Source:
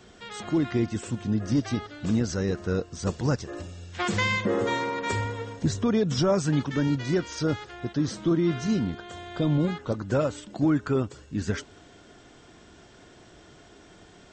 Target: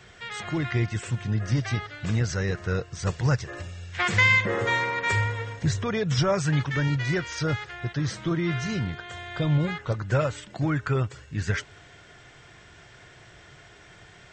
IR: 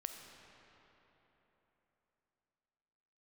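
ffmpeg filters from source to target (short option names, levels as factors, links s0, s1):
-af "equalizer=f=125:t=o:w=1:g=8,equalizer=f=250:t=o:w=1:g=-11,equalizer=f=2000:t=o:w=1:g=9"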